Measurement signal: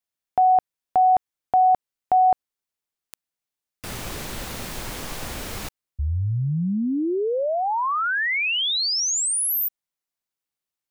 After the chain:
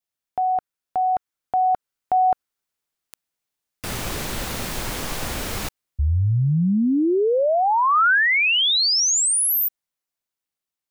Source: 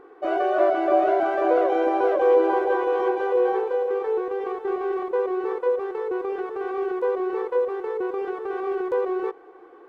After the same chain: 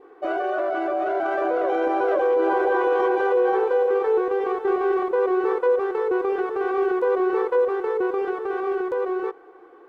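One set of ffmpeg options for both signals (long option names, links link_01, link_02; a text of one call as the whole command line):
ffmpeg -i in.wav -af "adynamicequalizer=threshold=0.00794:dfrequency=1400:dqfactor=4:tfrequency=1400:tqfactor=4:attack=5:release=100:ratio=0.375:range=2.5:mode=boostabove:tftype=bell,alimiter=limit=-17.5dB:level=0:latency=1:release=23,dynaudnorm=framelen=310:gausssize=11:maxgain=4.5dB" out.wav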